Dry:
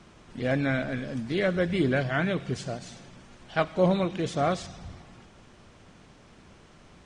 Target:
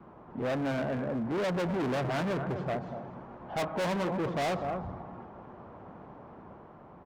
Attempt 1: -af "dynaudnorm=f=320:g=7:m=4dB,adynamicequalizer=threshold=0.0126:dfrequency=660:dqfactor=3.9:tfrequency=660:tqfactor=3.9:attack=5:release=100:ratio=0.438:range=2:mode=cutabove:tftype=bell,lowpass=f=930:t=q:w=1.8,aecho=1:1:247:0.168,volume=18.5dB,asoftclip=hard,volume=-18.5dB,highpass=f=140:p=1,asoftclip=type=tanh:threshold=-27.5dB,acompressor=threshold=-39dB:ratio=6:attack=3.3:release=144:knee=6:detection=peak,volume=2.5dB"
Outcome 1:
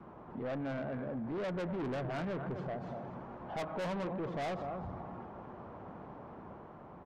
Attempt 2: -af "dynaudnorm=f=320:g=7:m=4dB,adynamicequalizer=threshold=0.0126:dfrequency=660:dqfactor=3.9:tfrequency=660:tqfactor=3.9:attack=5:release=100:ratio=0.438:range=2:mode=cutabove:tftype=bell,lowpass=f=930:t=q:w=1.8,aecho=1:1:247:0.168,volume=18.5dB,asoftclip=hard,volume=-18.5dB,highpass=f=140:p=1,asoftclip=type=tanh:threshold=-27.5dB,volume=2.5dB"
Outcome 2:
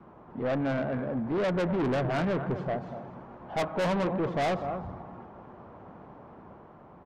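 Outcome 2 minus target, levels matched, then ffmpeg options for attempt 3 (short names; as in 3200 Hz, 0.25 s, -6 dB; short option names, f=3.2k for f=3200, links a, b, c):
overloaded stage: distortion -6 dB
-af "dynaudnorm=f=320:g=7:m=4dB,adynamicequalizer=threshold=0.0126:dfrequency=660:dqfactor=3.9:tfrequency=660:tqfactor=3.9:attack=5:release=100:ratio=0.438:range=2:mode=cutabove:tftype=bell,lowpass=f=930:t=q:w=1.8,aecho=1:1:247:0.168,volume=28.5dB,asoftclip=hard,volume=-28.5dB,highpass=f=140:p=1,asoftclip=type=tanh:threshold=-27.5dB,volume=2.5dB"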